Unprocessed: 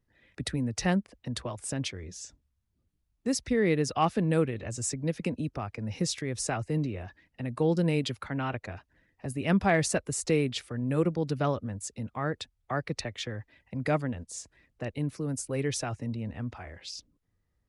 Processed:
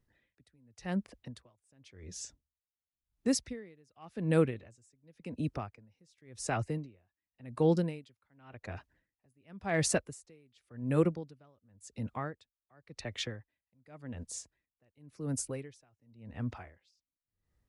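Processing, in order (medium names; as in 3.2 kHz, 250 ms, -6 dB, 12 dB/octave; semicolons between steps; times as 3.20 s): logarithmic tremolo 0.91 Hz, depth 36 dB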